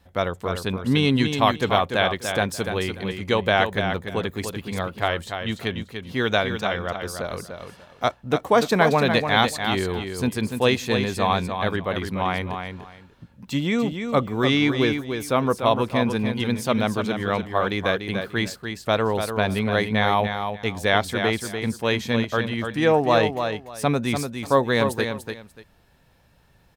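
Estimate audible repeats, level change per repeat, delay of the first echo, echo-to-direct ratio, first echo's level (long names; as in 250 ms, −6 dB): 2, −13.5 dB, 293 ms, −7.0 dB, −7.0 dB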